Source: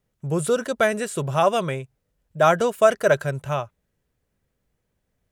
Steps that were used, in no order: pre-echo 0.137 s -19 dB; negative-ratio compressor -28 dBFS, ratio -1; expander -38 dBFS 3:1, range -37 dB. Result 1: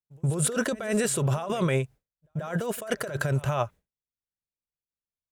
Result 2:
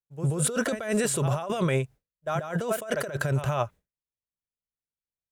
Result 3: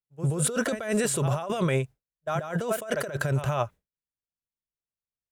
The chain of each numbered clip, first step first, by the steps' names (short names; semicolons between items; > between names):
negative-ratio compressor > pre-echo > expander; pre-echo > negative-ratio compressor > expander; pre-echo > expander > negative-ratio compressor